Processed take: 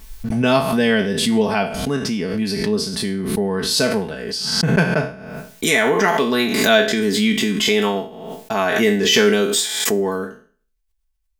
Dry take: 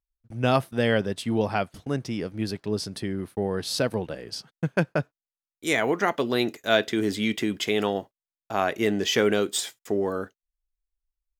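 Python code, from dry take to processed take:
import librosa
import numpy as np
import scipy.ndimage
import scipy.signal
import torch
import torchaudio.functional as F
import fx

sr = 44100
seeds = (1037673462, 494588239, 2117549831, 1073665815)

y = fx.spec_trails(x, sr, decay_s=0.44)
y = fx.peak_eq(y, sr, hz=560.0, db=-3.5, octaves=0.89)
y = fx.notch(y, sr, hz=1300.0, q=20.0)
y = y + 0.69 * np.pad(y, (int(4.6 * sr / 1000.0), 0))[:len(y)]
y = fx.pre_swell(y, sr, db_per_s=41.0)
y = F.gain(torch.from_numpy(y), 4.5).numpy()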